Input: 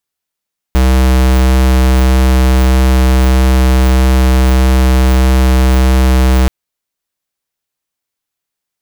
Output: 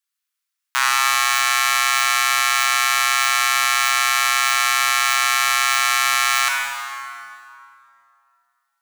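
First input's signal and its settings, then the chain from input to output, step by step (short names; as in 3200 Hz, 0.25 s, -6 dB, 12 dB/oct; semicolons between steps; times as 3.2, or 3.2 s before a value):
tone square 64.4 Hz -8 dBFS 5.73 s
steep high-pass 1100 Hz 36 dB/oct; sample leveller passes 2; plate-style reverb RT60 2.5 s, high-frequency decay 0.7×, DRR -1 dB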